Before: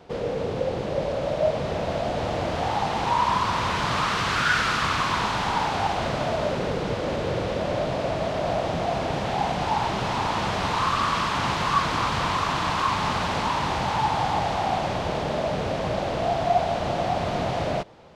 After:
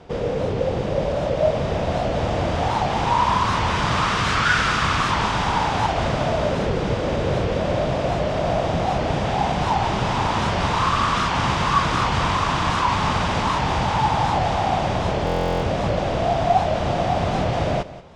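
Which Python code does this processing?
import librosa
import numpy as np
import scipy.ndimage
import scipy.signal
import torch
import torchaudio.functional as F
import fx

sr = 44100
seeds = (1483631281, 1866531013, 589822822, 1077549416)

p1 = scipy.signal.sosfilt(scipy.signal.butter(4, 9700.0, 'lowpass', fs=sr, output='sos'), x)
p2 = fx.low_shelf(p1, sr, hz=120.0, db=7.5)
p3 = fx.notch(p2, sr, hz=4200.0, q=15.0)
p4 = p3 + fx.echo_single(p3, sr, ms=183, db=-16.5, dry=0)
p5 = fx.buffer_glitch(p4, sr, at_s=(15.25,), block=1024, repeats=15)
p6 = fx.record_warp(p5, sr, rpm=78.0, depth_cents=160.0)
y = p6 * 10.0 ** (3.0 / 20.0)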